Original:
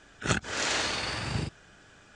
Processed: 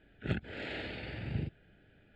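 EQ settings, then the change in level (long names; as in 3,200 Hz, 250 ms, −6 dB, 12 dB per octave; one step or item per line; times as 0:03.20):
head-to-tape spacing loss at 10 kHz 31 dB
phaser with its sweep stopped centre 2,600 Hz, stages 4
−2.5 dB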